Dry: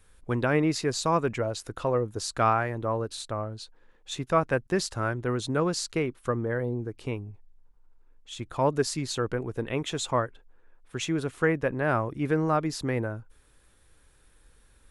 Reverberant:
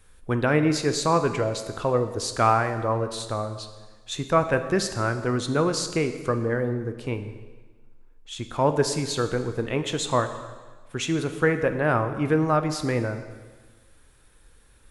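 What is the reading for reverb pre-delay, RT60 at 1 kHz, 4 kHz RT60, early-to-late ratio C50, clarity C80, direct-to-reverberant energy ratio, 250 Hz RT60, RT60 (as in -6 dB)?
6 ms, 1.4 s, 1.3 s, 10.0 dB, 11.5 dB, 8.0 dB, 1.4 s, 1.4 s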